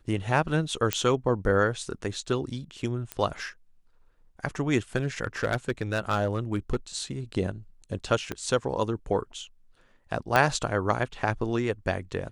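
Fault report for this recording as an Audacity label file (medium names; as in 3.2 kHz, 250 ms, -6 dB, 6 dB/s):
0.930000	0.930000	pop -7 dBFS
3.120000	3.120000	pop -16 dBFS
4.960000	6.760000	clipped -19 dBFS
8.320000	8.320000	pop -17 dBFS
10.360000	10.360000	pop -8 dBFS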